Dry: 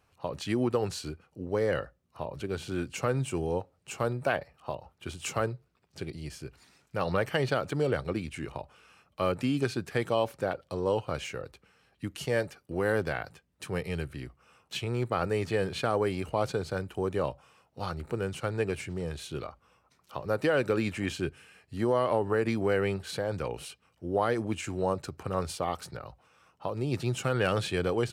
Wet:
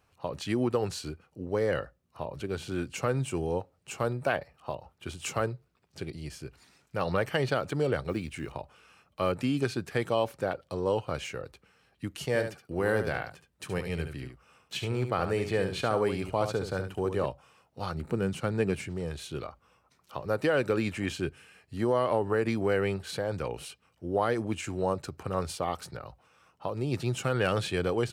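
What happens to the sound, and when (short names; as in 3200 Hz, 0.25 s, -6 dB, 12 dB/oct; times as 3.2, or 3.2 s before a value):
8.09–8.55 block floating point 7-bit
12.27–17.26 echo 72 ms -8.5 dB
17.95–18.88 bell 200 Hz +8 dB 0.95 oct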